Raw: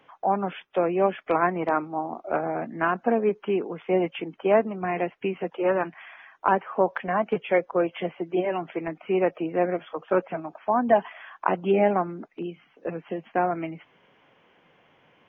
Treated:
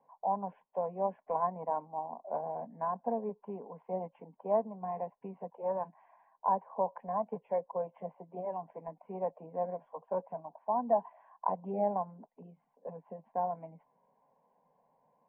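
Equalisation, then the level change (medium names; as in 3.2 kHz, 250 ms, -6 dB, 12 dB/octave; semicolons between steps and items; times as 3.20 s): four-pole ladder low-pass 1.1 kHz, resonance 75%; static phaser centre 340 Hz, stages 6; 0.0 dB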